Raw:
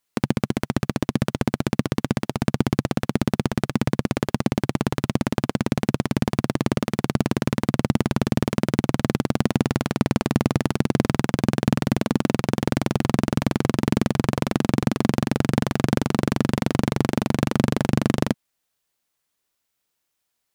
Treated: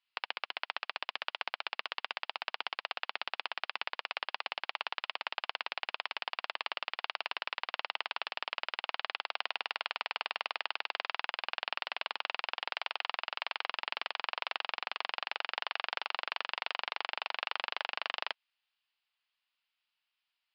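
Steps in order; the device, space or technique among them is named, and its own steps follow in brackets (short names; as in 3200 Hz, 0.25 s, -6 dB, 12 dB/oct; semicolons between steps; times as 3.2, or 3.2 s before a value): 12.72–13.64 HPF 270 Hz 6 dB/oct; musical greeting card (downsampling 11025 Hz; HPF 810 Hz 24 dB/oct; bell 2800 Hz +9 dB 0.59 oct); gain -6.5 dB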